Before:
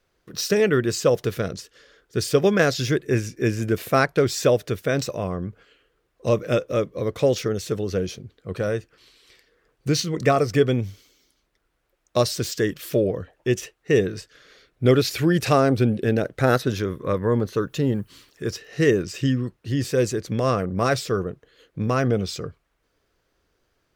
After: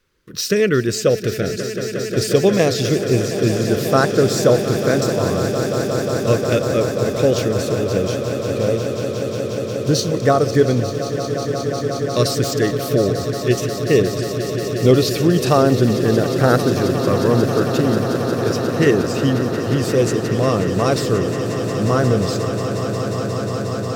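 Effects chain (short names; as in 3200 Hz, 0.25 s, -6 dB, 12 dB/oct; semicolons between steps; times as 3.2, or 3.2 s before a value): LFO notch saw up 0.17 Hz 680–3900 Hz; on a send: swelling echo 0.179 s, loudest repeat 8, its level -13 dB; on the sum: gain +4 dB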